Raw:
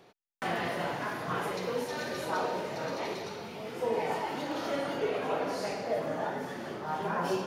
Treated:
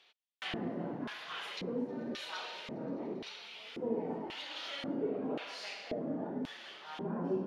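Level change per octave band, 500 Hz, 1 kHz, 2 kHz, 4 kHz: -7.0 dB, -12.5 dB, -8.0 dB, -0.5 dB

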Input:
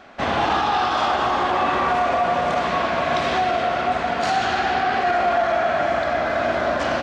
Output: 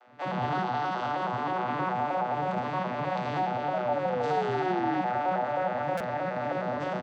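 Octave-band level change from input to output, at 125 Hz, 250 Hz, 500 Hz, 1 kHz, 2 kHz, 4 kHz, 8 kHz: -1.5 dB, -4.5 dB, -8.5 dB, -9.0 dB, -12.0 dB, -16.5 dB, no reading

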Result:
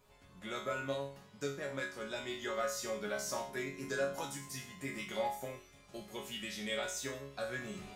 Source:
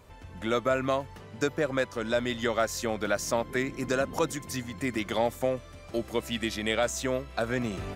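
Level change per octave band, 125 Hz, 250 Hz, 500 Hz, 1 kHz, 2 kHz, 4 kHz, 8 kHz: -12.0 dB, -13.0 dB, -10.5 dB, -9.5 dB, -8.0 dB, -7.5 dB, -6.0 dB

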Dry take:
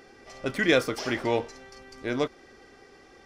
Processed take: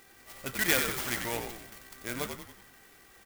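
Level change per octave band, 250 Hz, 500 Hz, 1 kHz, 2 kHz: -9.5 dB, -10.5 dB, -4.5 dB, -2.5 dB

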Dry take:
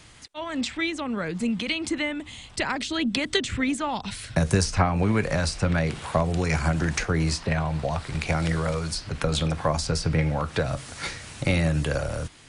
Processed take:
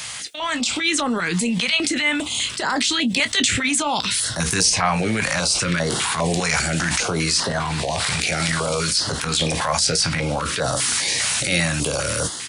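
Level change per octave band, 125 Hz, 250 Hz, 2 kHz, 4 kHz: -1.5 dB, +2.0 dB, +8.0 dB, +11.5 dB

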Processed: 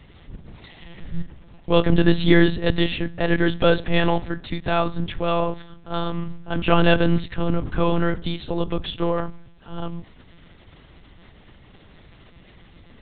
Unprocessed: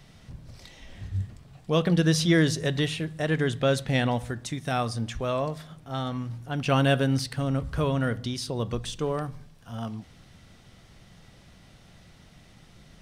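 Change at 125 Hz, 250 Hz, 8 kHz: +1.5 dB, +5.5 dB, under -40 dB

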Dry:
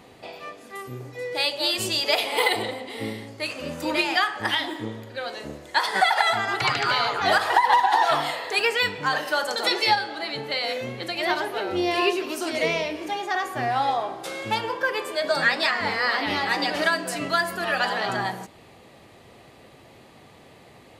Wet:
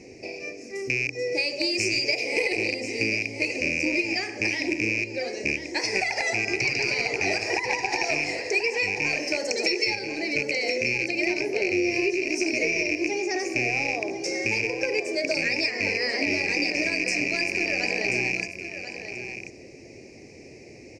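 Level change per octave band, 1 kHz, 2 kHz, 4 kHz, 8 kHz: -13.0 dB, +0.5 dB, -4.0 dB, +3.5 dB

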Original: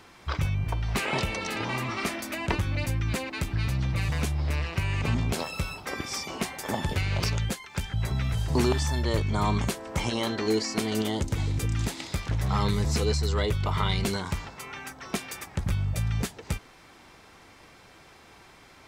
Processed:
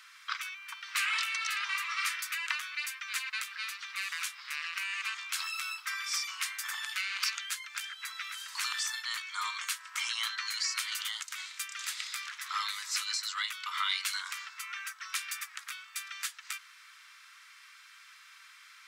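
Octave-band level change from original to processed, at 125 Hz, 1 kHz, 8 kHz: under -40 dB, -6.0 dB, +1.0 dB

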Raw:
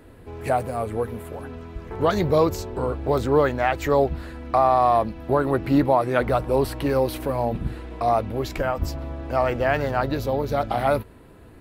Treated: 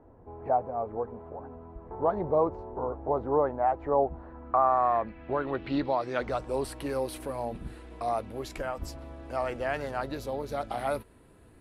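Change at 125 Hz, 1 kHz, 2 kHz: -13.5 dB, -6.0 dB, -10.0 dB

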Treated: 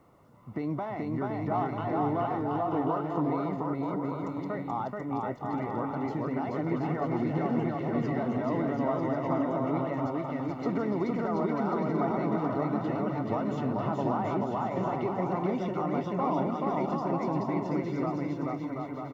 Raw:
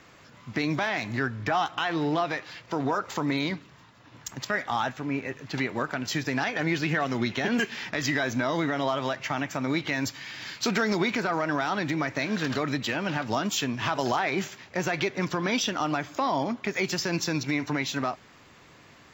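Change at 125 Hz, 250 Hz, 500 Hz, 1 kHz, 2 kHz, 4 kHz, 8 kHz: +0.5 dB, 0.0 dB, 0.0 dB, -1.0 dB, -15.0 dB, under -20 dB, under -25 dB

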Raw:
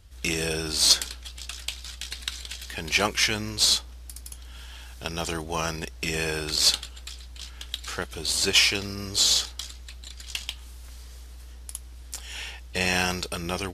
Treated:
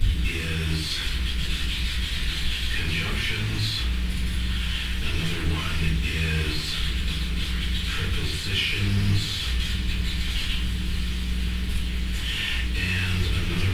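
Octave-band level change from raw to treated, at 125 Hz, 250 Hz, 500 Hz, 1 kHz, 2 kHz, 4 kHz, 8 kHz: +12.0 dB, +4.5 dB, -6.0 dB, -5.0 dB, +1.0 dB, -2.0 dB, -11.0 dB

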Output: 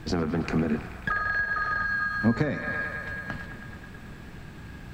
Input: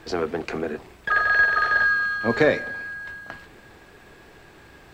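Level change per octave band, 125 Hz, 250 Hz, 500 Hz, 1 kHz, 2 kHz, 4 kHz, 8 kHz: +6.5 dB, +3.0 dB, -8.5 dB, -5.5 dB, -7.0 dB, -6.0 dB, no reading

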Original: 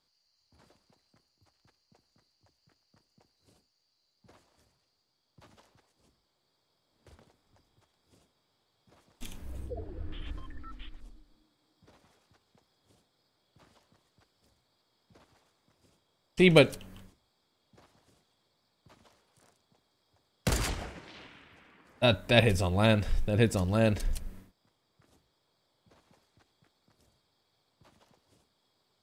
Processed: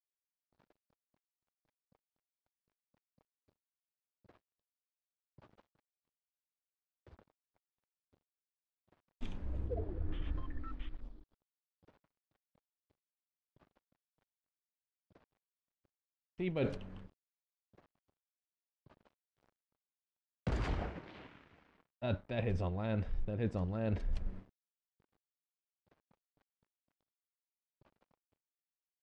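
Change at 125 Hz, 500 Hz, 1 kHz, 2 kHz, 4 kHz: -8.5 dB, -12.5 dB, -11.5 dB, -17.0 dB, -21.0 dB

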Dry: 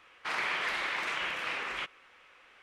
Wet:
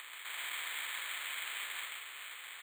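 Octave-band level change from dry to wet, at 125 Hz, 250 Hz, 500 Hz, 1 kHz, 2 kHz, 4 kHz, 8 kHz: under -25 dB, under -20 dB, -17.5 dB, -11.5 dB, -7.0 dB, -3.0 dB, +6.5 dB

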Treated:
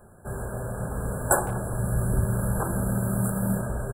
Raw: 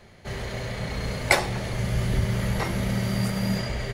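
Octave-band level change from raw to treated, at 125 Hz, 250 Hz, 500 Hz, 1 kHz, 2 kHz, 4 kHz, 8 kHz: 0.0 dB, 0.0 dB, 0.0 dB, +0.5 dB, -7.5 dB, under -35 dB, +5.5 dB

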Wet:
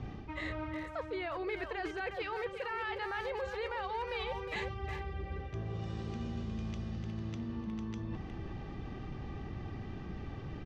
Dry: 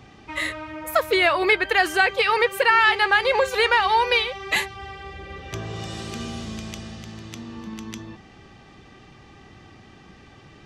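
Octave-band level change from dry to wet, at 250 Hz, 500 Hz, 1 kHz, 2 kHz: -6.5 dB, -14.5 dB, -18.0 dB, -20.5 dB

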